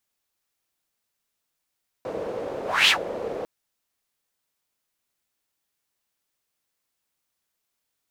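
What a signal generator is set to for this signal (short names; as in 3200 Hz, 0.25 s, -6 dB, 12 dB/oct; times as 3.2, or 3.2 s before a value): whoosh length 1.40 s, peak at 0.84, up 0.26 s, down 0.11 s, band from 500 Hz, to 3200 Hz, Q 4, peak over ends 15 dB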